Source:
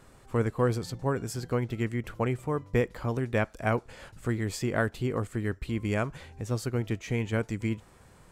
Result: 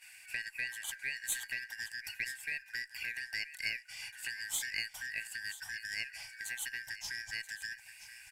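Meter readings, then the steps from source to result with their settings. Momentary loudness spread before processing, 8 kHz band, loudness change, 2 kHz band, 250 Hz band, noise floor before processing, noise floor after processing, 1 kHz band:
5 LU, +4.5 dB, −8.0 dB, +1.0 dB, −36.5 dB, −56 dBFS, −56 dBFS, −25.0 dB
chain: band-splitting scrambler in four parts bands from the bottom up 3142
downward compressor 12 to 1, threshold −31 dBFS, peak gain reduction 12 dB
dynamic equaliser 2,800 Hz, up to −4 dB, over −44 dBFS, Q 0.9
on a send: single-tap delay 979 ms −14 dB
on the sum: noise gate −59 dBFS, range −10 dB
drawn EQ curve 110 Hz 0 dB, 430 Hz −27 dB, 840 Hz +7 dB, 1,400 Hz −11 dB, 2,400 Hz +9 dB, 5,100 Hz +3 dB, 9,800 Hz +13 dB
harmonic generator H 6 −28 dB, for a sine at −14.5 dBFS
level −2 dB

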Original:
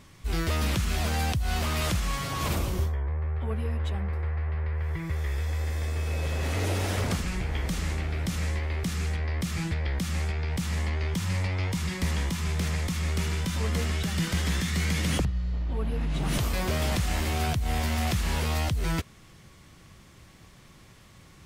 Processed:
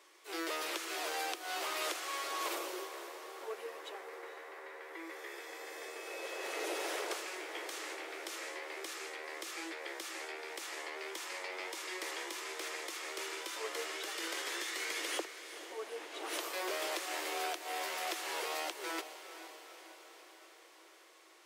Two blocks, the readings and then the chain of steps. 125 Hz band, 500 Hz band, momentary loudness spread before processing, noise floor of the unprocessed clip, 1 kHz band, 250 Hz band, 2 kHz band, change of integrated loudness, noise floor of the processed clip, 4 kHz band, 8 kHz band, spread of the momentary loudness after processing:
below −40 dB, −5.0 dB, 3 LU, −53 dBFS, −5.0 dB, −17.0 dB, −5.0 dB, −10.5 dB, −59 dBFS, −5.5 dB, −5.5 dB, 12 LU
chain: Chebyshev high-pass filter 330 Hz, order 6
feedback delay with all-pass diffusion 473 ms, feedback 61%, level −12 dB
level −5 dB

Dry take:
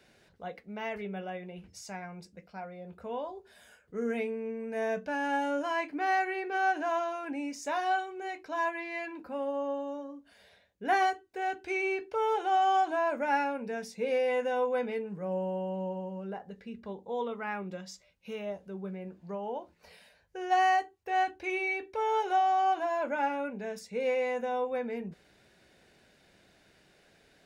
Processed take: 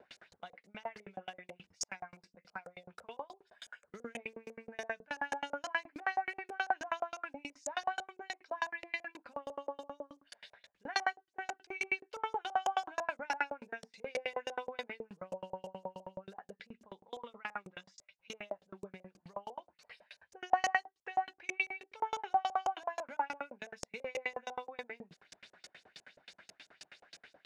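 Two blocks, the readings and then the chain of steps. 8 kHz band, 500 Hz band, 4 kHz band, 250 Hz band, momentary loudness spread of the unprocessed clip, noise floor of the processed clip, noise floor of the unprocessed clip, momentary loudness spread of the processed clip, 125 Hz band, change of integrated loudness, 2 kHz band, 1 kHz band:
+1.5 dB, −11.5 dB, −1.5 dB, −15.0 dB, 16 LU, −81 dBFS, −64 dBFS, 20 LU, −14.0 dB, −7.5 dB, −4.0 dB, −8.0 dB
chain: one scale factor per block 7 bits
RIAA equalisation recording
in parallel at +0.5 dB: upward compression, threshold −31 dBFS
on the sum: auto-filter low-pass saw up 6 Hz 510–7,500 Hz
parametric band 430 Hz −5 dB 1.3 octaves
tremolo with a ramp in dB decaying 9.4 Hz, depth 35 dB
level −5.5 dB

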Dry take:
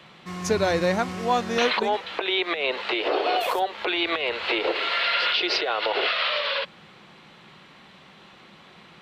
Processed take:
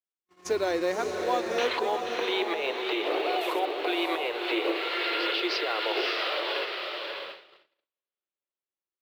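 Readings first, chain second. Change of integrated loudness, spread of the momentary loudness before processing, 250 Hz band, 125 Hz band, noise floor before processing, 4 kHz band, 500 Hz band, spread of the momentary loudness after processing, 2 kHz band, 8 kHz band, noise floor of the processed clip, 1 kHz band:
−4.5 dB, 5 LU, −2.5 dB, can't be measured, −51 dBFS, −5.5 dB, −2.5 dB, 6 LU, −5.0 dB, −5.5 dB, below −85 dBFS, −4.5 dB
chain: feedback delay with all-pass diffusion 575 ms, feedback 40%, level −4 dB
floating-point word with a short mantissa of 4 bits
low shelf with overshoot 250 Hz −8 dB, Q 3
noise gate −32 dBFS, range −51 dB
level −7 dB

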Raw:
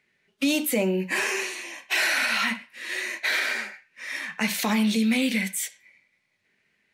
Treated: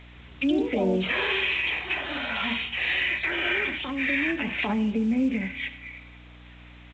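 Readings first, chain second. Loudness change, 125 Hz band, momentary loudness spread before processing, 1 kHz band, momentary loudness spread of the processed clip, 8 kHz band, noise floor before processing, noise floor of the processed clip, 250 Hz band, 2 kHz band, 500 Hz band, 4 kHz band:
−0.5 dB, can't be measured, 11 LU, −1.0 dB, 6 LU, below −25 dB, −72 dBFS, −48 dBFS, 0.0 dB, 0.0 dB, +1.0 dB, −0.5 dB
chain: treble cut that deepens with the level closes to 500 Hz, closed at −19.5 dBFS
high-pass filter 120 Hz 24 dB per octave
parametric band 2,500 Hz +12 dB 0.66 octaves
comb filter 7.1 ms, depth 38%
in parallel at −2 dB: downward compressor 4 to 1, threshold −39 dBFS, peak gain reduction 19.5 dB
on the sum: brickwall limiter −17.5 dBFS, peak gain reduction 11.5 dB
mains hum 60 Hz, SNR 20 dB
bit-depth reduction 8 bits, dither triangular
delay with pitch and tempo change per echo 159 ms, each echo +4 semitones, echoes 2, each echo −6 dB
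spring reverb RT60 1.4 s, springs 30 ms, chirp 70 ms, DRR 17.5 dB
downsampling to 8,000 Hz
mu-law 128 kbit/s 16,000 Hz

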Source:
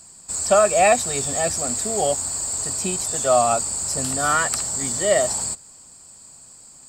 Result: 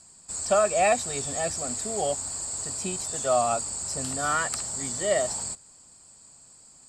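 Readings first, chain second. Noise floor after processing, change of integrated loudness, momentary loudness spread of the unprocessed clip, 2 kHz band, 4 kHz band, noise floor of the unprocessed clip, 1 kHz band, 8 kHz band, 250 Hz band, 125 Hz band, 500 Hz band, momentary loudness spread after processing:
−53 dBFS, −6.5 dB, 7 LU, −6.0 dB, −6.0 dB, −46 dBFS, −6.0 dB, −7.0 dB, −6.0 dB, −6.0 dB, −6.0 dB, 7 LU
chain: low-pass filter 10,000 Hz 12 dB per octave
level −6 dB

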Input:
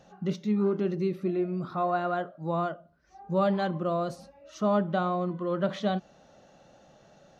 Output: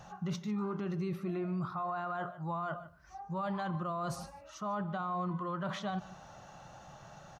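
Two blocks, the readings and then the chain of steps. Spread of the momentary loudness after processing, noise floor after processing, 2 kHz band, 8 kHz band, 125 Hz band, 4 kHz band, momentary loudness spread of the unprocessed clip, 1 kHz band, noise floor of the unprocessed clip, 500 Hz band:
17 LU, −54 dBFS, −5.0 dB, can't be measured, −5.0 dB, −5.5 dB, 8 LU, −5.5 dB, −59 dBFS, −12.0 dB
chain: graphic EQ with 10 bands 125 Hz +4 dB, 250 Hz −10 dB, 500 Hz −11 dB, 1,000 Hz +7 dB, 2,000 Hz −3 dB, 4,000 Hz −5 dB
reversed playback
downward compressor 6 to 1, threshold −39 dBFS, peak gain reduction 15 dB
reversed playback
single-tap delay 149 ms −20 dB
brickwall limiter −36.5 dBFS, peak gain reduction 7 dB
level +8 dB

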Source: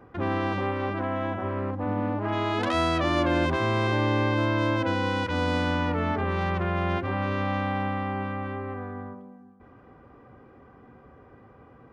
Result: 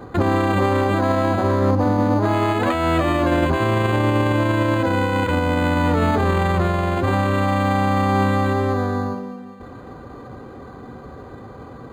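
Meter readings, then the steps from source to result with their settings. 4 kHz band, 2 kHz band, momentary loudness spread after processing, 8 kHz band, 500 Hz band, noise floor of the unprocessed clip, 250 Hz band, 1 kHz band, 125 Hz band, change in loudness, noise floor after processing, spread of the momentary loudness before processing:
+3.0 dB, +5.5 dB, 20 LU, can't be measured, +8.5 dB, −53 dBFS, +8.5 dB, +8.0 dB, +8.5 dB, +8.0 dB, −39 dBFS, 8 LU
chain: on a send: feedback echo with a high-pass in the loop 136 ms, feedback 81%, high-pass 160 Hz, level −22 dB
on the sum: boost into a limiter +22.5 dB
linearly interpolated sample-rate reduction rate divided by 8×
level −8 dB

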